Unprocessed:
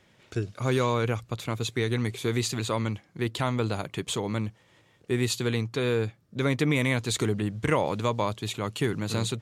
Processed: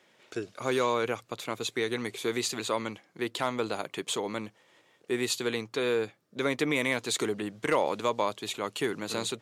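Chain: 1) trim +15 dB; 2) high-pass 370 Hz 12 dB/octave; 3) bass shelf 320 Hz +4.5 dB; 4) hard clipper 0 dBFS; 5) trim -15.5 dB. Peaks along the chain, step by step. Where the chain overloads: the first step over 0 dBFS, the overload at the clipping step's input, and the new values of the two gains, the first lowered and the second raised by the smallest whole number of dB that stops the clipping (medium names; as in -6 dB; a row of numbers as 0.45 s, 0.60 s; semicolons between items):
+3.0 dBFS, +4.0 dBFS, +4.5 dBFS, 0.0 dBFS, -15.5 dBFS; step 1, 4.5 dB; step 1 +10 dB, step 5 -10.5 dB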